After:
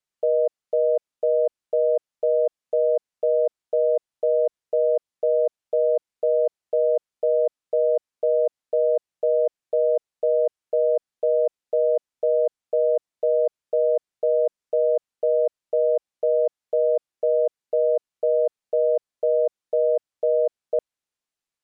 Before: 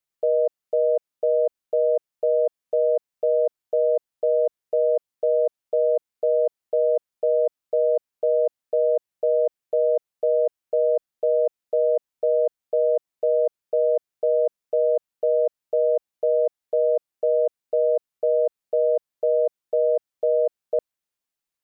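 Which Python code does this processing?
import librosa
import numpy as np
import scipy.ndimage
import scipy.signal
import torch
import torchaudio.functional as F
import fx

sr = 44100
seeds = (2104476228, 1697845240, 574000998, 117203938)

y = scipy.signal.sosfilt(scipy.signal.butter(2, 9500.0, 'lowpass', fs=sr, output='sos'), x)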